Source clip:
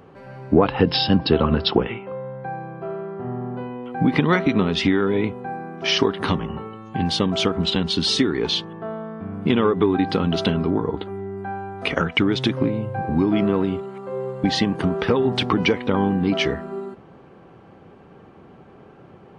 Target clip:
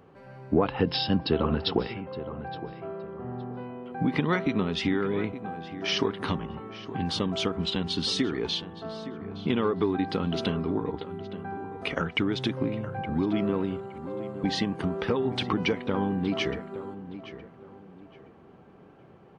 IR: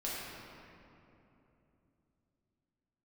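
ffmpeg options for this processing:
-filter_complex "[0:a]asplit=2[s0][s1];[s1]adelay=867,lowpass=f=2300:p=1,volume=0.224,asplit=2[s2][s3];[s3]adelay=867,lowpass=f=2300:p=1,volume=0.32,asplit=2[s4][s5];[s5]adelay=867,lowpass=f=2300:p=1,volume=0.32[s6];[s0][s2][s4][s6]amix=inputs=4:normalize=0,volume=0.422"

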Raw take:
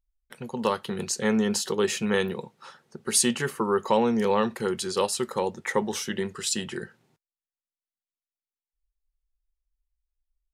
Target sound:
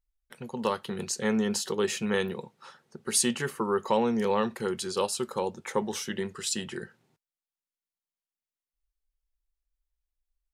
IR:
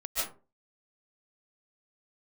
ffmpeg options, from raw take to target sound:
-filter_complex "[0:a]asettb=1/sr,asplit=3[s0][s1][s2];[s0]atrim=end=4.894[s3];[s1]atrim=start=4.89:end=5.78,asetpts=PTS-STARTPTS,afade=t=in:d=0.004:c=qsin,afade=t=out:st=0.886:d=0.004:c=qsin,bandreject=f=1900:w=5.2[s4];[s2]atrim=start=5.776[s5];[s3][s4]acrossfade=d=0.004:c1=hsin:c2=qsin[s6];[s6][s5]acrossfade=d=0.004:c1=qsin:c2=hsin,volume=0.708"

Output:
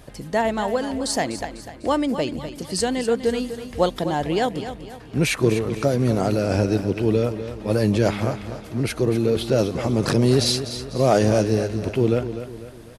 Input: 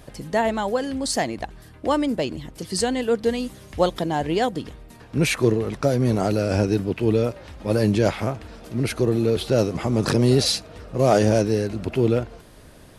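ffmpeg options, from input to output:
-af "aecho=1:1:249|498|747|996:0.282|0.121|0.0521|0.0224"

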